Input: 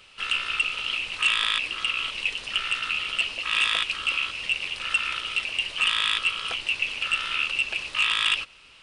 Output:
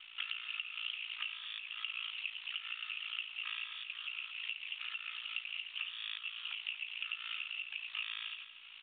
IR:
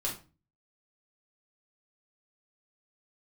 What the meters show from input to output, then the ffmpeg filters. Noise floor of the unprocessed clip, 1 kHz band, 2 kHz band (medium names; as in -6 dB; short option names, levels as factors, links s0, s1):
-52 dBFS, -21.5 dB, -16.0 dB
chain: -filter_complex "[0:a]aderivative,acompressor=threshold=0.00562:ratio=16,aeval=exprs='val(0)*sin(2*PI*28*n/s)':c=same,aeval=exprs='val(0)+0.000141*(sin(2*PI*50*n/s)+sin(2*PI*2*50*n/s)/2+sin(2*PI*3*50*n/s)/3+sin(2*PI*4*50*n/s)/4+sin(2*PI*5*50*n/s)/5)':c=same,acrusher=bits=8:mode=log:mix=0:aa=0.000001,asuperpass=centerf=1700:order=12:qfactor=0.56,asplit=2[s0][s1];[s1]aecho=0:1:236|472|708:0.251|0.0502|0.01[s2];[s0][s2]amix=inputs=2:normalize=0,volume=3.35" -ar 8000 -c:a pcm_mulaw